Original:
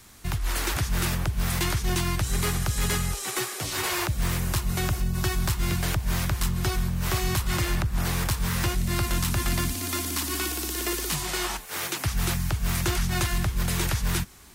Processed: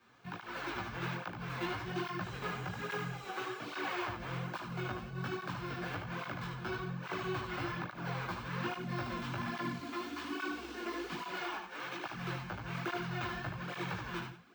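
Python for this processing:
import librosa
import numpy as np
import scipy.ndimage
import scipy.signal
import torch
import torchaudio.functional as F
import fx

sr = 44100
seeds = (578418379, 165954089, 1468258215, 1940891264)

p1 = fx.bandpass_edges(x, sr, low_hz=200.0, high_hz=2400.0)
p2 = fx.peak_eq(p1, sr, hz=1700.0, db=4.0, octaves=0.35)
p3 = fx.notch(p2, sr, hz=1900.0, q=5.8)
p4 = p3 + fx.echo_single(p3, sr, ms=92, db=-11.0, dry=0)
p5 = np.repeat(scipy.signal.resample_poly(p4, 1, 2), 2)[:len(p4)]
p6 = fx.doubler(p5, sr, ms=17.0, db=-2)
p7 = fx.room_early_taps(p6, sr, ms=(21, 76), db=(-6.5, -5.0))
p8 = fx.flanger_cancel(p7, sr, hz=1.2, depth_ms=7.5)
y = p8 * 10.0 ** (-7.5 / 20.0)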